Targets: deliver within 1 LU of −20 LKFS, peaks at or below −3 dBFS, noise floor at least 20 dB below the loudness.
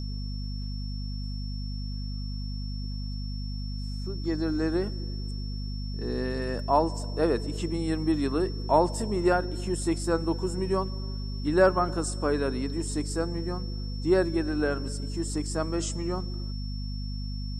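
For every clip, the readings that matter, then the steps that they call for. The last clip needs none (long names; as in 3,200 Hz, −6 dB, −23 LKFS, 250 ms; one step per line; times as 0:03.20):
mains hum 50 Hz; hum harmonics up to 250 Hz; level of the hum −31 dBFS; interfering tone 5,400 Hz; level of the tone −44 dBFS; integrated loudness −29.5 LKFS; sample peak −7.5 dBFS; target loudness −20.0 LKFS
→ hum removal 50 Hz, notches 5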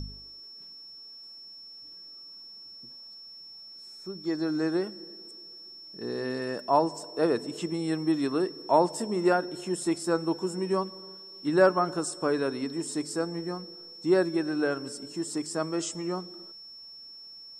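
mains hum none found; interfering tone 5,400 Hz; level of the tone −44 dBFS
→ notch filter 5,400 Hz, Q 30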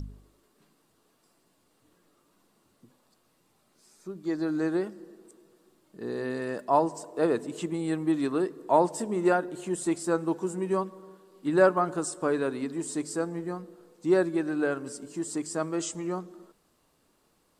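interfering tone none found; integrated loudness −29.0 LKFS; sample peak −8.0 dBFS; target loudness −20.0 LKFS
→ level +9 dB
brickwall limiter −3 dBFS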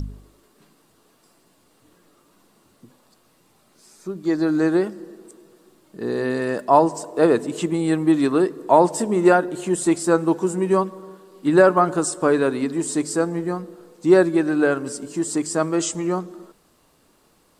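integrated loudness −20.5 LKFS; sample peak −3.0 dBFS; background noise floor −60 dBFS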